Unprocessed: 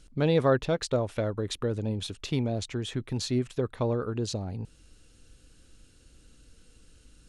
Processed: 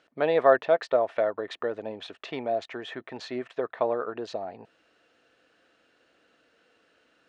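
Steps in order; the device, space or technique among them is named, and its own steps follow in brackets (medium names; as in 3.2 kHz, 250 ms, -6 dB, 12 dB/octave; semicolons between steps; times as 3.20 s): tin-can telephone (band-pass 560–2100 Hz; small resonant body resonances 670/1800 Hz, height 9 dB, ringing for 35 ms); trim +5.5 dB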